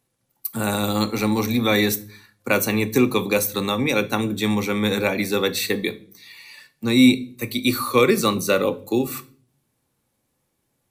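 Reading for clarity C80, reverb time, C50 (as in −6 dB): 24.5 dB, 0.45 s, 19.0 dB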